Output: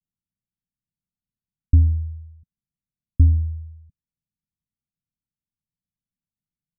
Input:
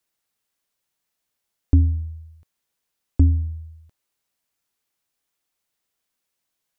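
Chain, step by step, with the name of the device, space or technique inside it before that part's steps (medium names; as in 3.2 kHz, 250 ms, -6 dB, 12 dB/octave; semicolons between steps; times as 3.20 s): the neighbour's flat through the wall (low-pass 210 Hz 24 dB/octave; peaking EQ 170 Hz +4 dB); trim +1.5 dB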